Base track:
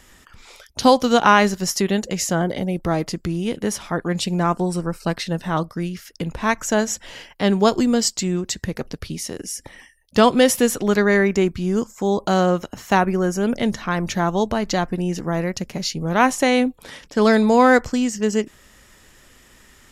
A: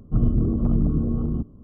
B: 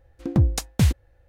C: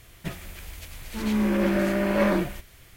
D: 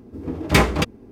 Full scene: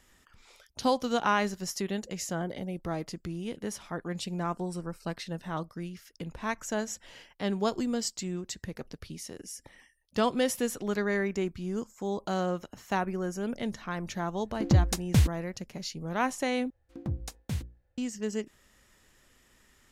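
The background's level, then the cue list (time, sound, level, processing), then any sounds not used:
base track -12.5 dB
14.35 add B -3.5 dB
16.7 replace with B -14 dB + notches 60/120/180/240/300/360/420/480/540 Hz
not used: A, C, D

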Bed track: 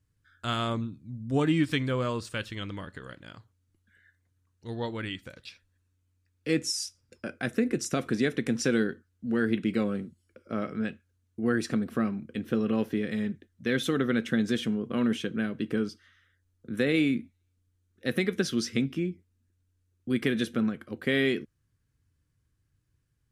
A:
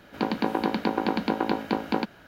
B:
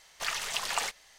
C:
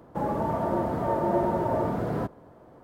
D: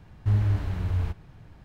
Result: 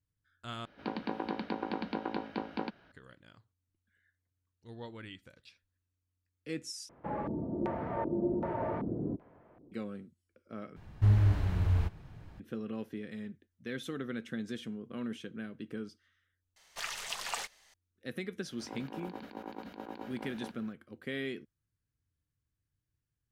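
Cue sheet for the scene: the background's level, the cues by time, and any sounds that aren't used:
bed track -12 dB
0.65 replace with A -10.5 dB + polynomial smoothing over 15 samples
6.89 replace with C -9 dB + LFO low-pass square 1.3 Hz 320–2300 Hz
10.76 replace with D -1.5 dB
16.56 replace with B -6 dB
18.46 add A -15 dB + negative-ratio compressor -29 dBFS, ratio -0.5

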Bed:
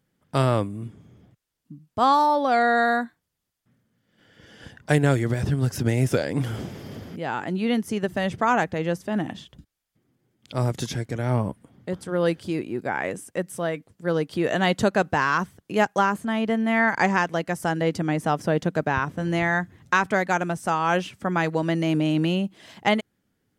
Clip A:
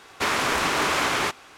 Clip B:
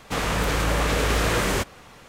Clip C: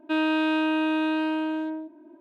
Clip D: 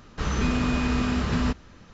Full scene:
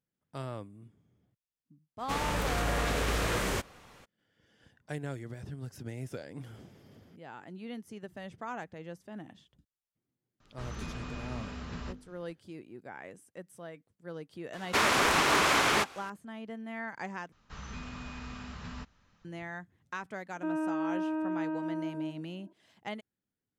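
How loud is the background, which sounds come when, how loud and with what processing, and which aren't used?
bed -18.5 dB
1.98 add B -8 dB, fades 0.02 s
10.4 add D -14.5 dB + notches 50/100/150/200/250/300/350/400/450/500 Hz
14.53 add A -2 dB
17.32 replace with D -18 dB + EQ curve 200 Hz 0 dB, 350 Hz -7 dB, 900 Hz +3 dB
20.33 add C -7.5 dB + Bessel low-pass 1100 Hz, order 4

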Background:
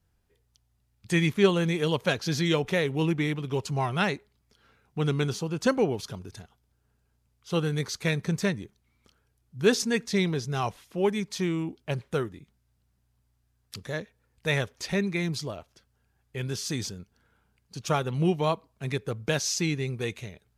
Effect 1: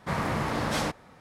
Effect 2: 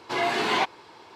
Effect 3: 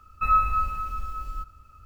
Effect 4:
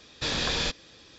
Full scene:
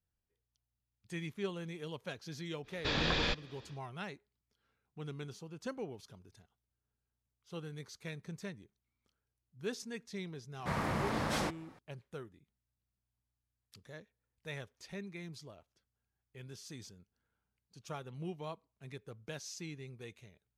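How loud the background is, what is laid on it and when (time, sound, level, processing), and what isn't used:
background -17.5 dB
2.63 add 4 -2.5 dB, fades 0.10 s + LPF 3400 Hz
10.59 add 1 -6 dB
not used: 2, 3

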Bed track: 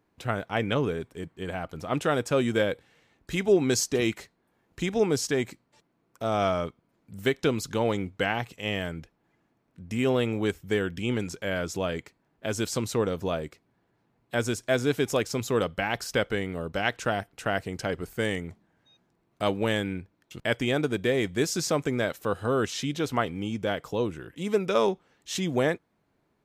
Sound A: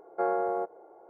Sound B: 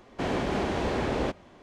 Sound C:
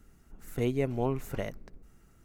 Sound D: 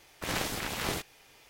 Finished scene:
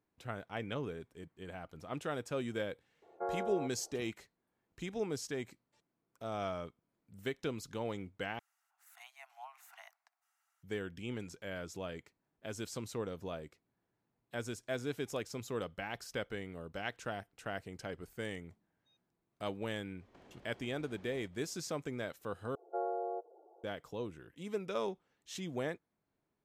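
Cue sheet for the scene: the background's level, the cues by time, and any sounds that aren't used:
bed track -13 dB
3.02 add A -9.5 dB + LPF 2000 Hz
8.39 replace with C -11 dB + steep high-pass 700 Hz 96 dB/oct
19.96 add B -15.5 dB, fades 0.05 s + compressor 10:1, threshold -41 dBFS
22.55 replace with A -8.5 dB + spectral contrast raised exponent 1.8
not used: D

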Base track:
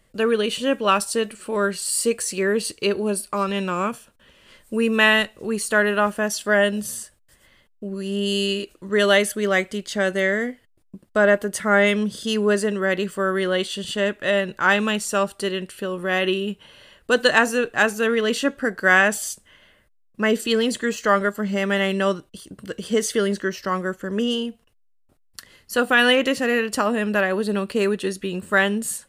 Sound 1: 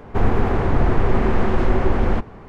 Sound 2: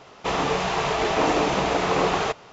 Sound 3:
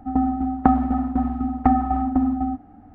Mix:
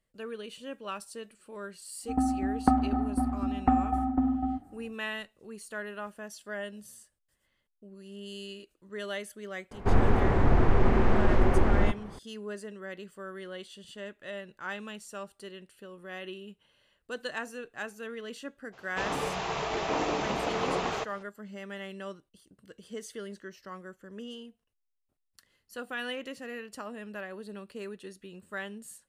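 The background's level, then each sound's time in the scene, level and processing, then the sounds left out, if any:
base track -19.5 dB
2.02 add 3 -6.5 dB, fades 0.10 s
9.71 add 1 -5 dB
18.72 add 2 -8.5 dB, fades 0.02 s

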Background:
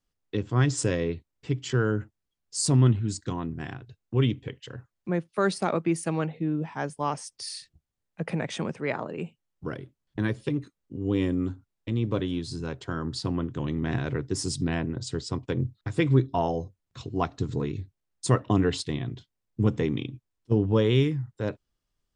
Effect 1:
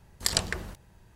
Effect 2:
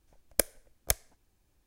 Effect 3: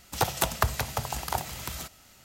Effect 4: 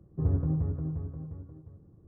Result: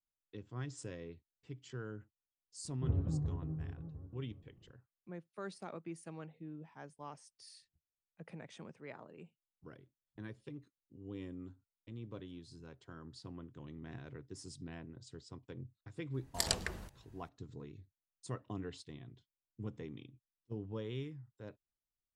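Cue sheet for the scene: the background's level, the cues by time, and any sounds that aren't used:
background -20 dB
2.64 add 4 -7.5 dB + record warp 78 rpm, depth 100 cents
16.14 add 1 -7.5 dB
not used: 2, 3

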